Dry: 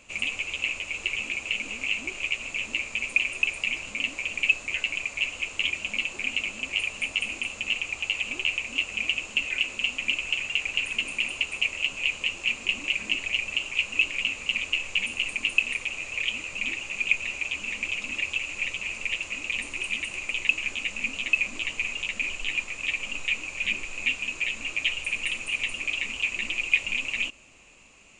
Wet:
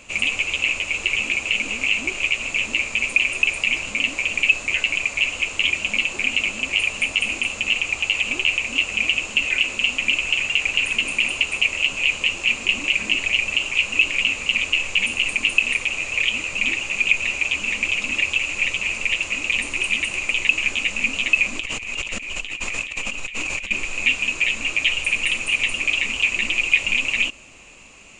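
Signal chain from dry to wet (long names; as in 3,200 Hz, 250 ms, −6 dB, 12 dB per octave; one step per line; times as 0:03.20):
in parallel at +1 dB: brickwall limiter −17.5 dBFS, peak gain reduction 10.5 dB
0:21.60–0:23.71: on the sum: compressor whose output falls as the input rises −31 dBFS, ratio −1
level +2 dB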